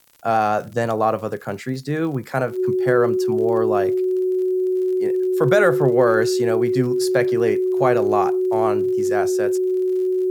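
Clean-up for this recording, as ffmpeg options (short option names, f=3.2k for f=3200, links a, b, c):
-af "adeclick=t=4,bandreject=f=370:w=30,agate=range=-21dB:threshold=-20dB"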